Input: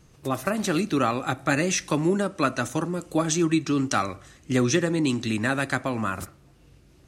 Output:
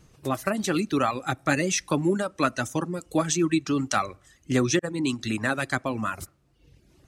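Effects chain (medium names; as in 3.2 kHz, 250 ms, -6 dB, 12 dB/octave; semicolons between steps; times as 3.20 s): reverb removal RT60 0.88 s; 4.79–5.19 s: expander -23 dBFS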